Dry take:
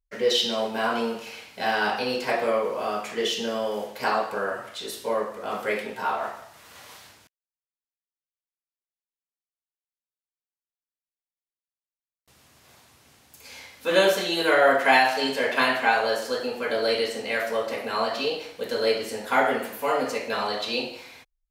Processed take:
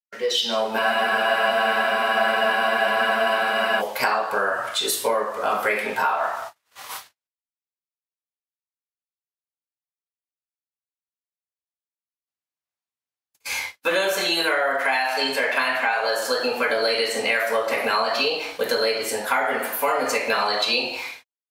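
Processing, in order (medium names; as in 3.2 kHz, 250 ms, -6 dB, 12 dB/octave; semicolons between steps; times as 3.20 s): in parallel at +2 dB: peak limiter -15.5 dBFS, peak gain reduction 9.5 dB; on the sum: gate -38 dBFS, range -56 dB; bass shelf 440 Hz -12 dB; level rider gain up to 15 dB; spectral noise reduction 6 dB; compression, threshold -19 dBFS, peak gain reduction 10.5 dB; spectral freeze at 0.81 s, 2.99 s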